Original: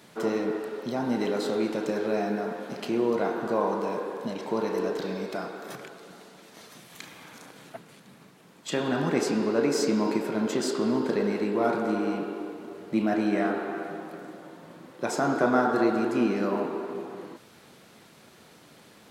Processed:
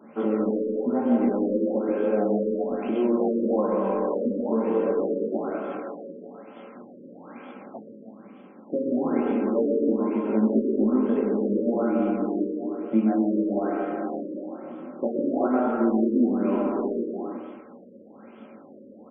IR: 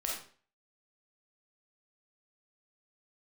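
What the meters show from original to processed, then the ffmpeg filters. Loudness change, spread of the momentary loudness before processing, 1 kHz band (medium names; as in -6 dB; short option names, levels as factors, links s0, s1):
+3.0 dB, 20 LU, -1.5 dB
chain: -filter_complex "[0:a]equalizer=f=3200:w=1.8:g=-5.5,bandreject=f=500:w=12,aecho=1:1:3.8:0.47,acompressor=threshold=0.0316:ratio=3,flanger=delay=18:depth=7.7:speed=0.38,highpass=140,equalizer=f=150:t=q:w=4:g=-7,equalizer=f=230:t=q:w=4:g=8,equalizer=f=380:t=q:w=4:g=7,equalizer=f=540:t=q:w=4:g=5,equalizer=f=1800:t=q:w=4:g=-9,lowpass=f=6500:w=0.5412,lowpass=f=6500:w=1.3066,asplit=2[s0][s1];[s1]adelay=140,highpass=300,lowpass=3400,asoftclip=type=hard:threshold=0.0282,volume=0.224[s2];[s0][s2]amix=inputs=2:normalize=0,asplit=2[s3][s4];[1:a]atrim=start_sample=2205,adelay=126[s5];[s4][s5]afir=irnorm=-1:irlink=0,volume=0.531[s6];[s3][s6]amix=inputs=2:normalize=0,afftfilt=real='re*lt(b*sr/1024,560*pow(3500/560,0.5+0.5*sin(2*PI*1.1*pts/sr)))':imag='im*lt(b*sr/1024,560*pow(3500/560,0.5+0.5*sin(2*PI*1.1*pts/sr)))':win_size=1024:overlap=0.75,volume=1.88"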